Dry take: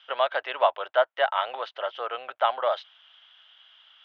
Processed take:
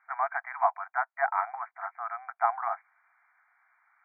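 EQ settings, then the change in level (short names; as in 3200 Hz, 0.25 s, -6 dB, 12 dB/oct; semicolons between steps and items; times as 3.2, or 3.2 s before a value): brick-wall FIR band-pass 670–2400 Hz; air absorption 310 m; 0.0 dB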